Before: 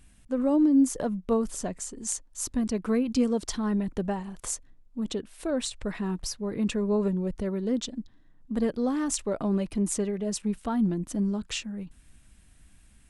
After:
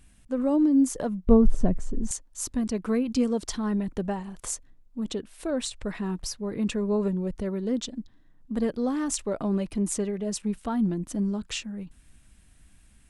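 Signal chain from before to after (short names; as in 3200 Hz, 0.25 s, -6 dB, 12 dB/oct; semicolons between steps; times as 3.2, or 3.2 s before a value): 1.27–2.11 tilt -4.5 dB/oct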